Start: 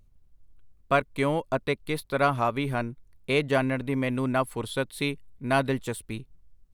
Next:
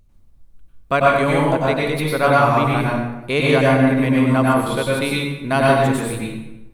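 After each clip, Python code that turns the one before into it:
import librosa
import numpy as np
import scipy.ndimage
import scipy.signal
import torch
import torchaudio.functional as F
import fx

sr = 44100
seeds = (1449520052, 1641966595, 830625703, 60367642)

y = fx.rev_plate(x, sr, seeds[0], rt60_s=1.0, hf_ratio=0.7, predelay_ms=85, drr_db=-4.5)
y = F.gain(torch.from_numpy(y), 4.0).numpy()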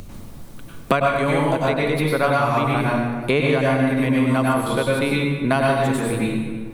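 y = fx.band_squash(x, sr, depth_pct=100)
y = F.gain(torch.from_numpy(y), -3.5).numpy()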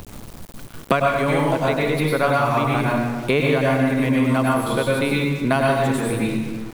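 y = np.where(np.abs(x) >= 10.0 ** (-35.5 / 20.0), x, 0.0)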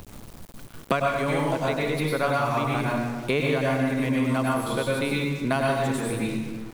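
y = fx.dynamic_eq(x, sr, hz=6200.0, q=1.0, threshold_db=-44.0, ratio=4.0, max_db=4)
y = F.gain(torch.from_numpy(y), -5.5).numpy()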